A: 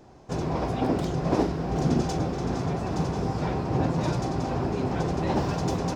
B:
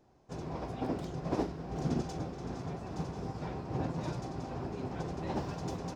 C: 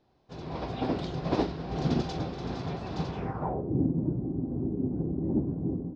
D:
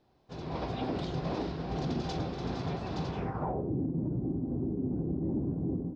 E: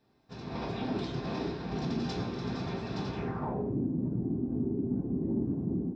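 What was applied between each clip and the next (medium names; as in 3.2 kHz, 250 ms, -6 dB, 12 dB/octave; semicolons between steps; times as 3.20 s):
upward expansion 1.5:1, over -33 dBFS; trim -8 dB
low-pass sweep 4 kHz -> 290 Hz, 3.09–3.75 s; level rider gain up to 8.5 dB; trim -3.5 dB
peak limiter -24.5 dBFS, peak gain reduction 10 dB
reverberation RT60 0.65 s, pre-delay 3 ms, DRR 1 dB; trim -2 dB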